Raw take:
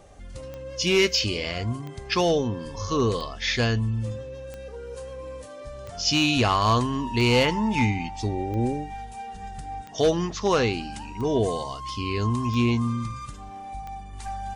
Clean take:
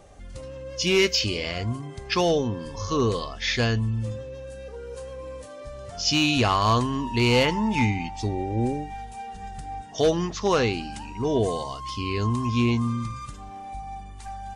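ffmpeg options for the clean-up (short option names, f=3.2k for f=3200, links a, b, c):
-af "adeclick=t=4,asetnsamples=n=441:p=0,asendcmd='14.13 volume volume -3.5dB',volume=0dB"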